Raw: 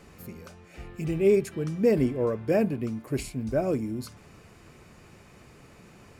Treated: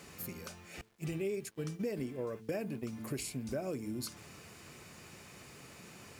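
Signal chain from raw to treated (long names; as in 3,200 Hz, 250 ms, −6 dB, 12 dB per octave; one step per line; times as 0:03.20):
high-pass filter 82 Hz 12 dB per octave
0:00.81–0:02.93: noise gate −31 dBFS, range −27 dB
high-shelf EQ 2,300 Hz +9.5 dB
hum removal 110.3 Hz, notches 4
downward compressor 5 to 1, threshold −33 dBFS, peak gain reduction 15 dB
bit reduction 11 bits
level −2.5 dB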